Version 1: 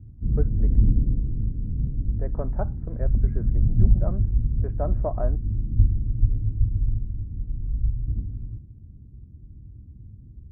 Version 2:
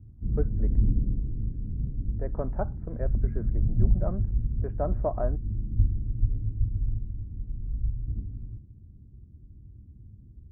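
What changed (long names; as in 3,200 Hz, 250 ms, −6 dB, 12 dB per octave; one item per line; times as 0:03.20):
background −4.5 dB
reverb: on, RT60 0.65 s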